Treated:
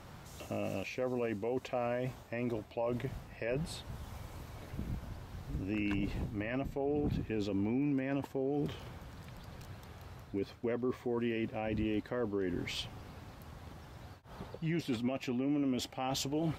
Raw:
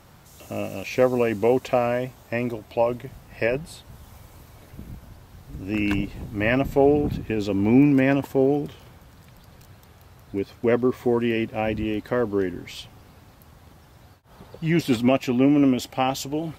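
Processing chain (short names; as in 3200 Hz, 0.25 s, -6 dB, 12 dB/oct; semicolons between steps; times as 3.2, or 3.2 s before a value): high shelf 8300 Hz -10 dB; reverse; compressor 4:1, threshold -30 dBFS, peak gain reduction 15 dB; reverse; limiter -25.5 dBFS, peak gain reduction 8.5 dB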